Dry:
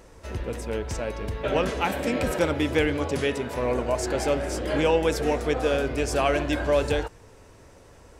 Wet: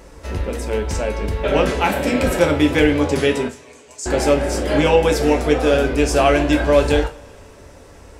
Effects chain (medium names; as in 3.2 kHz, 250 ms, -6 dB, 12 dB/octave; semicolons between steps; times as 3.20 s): 3.48–4.06 s: band-pass filter 7.1 kHz, Q 2.6; two-slope reverb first 0.28 s, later 2.8 s, from -28 dB, DRR 4 dB; trim +6 dB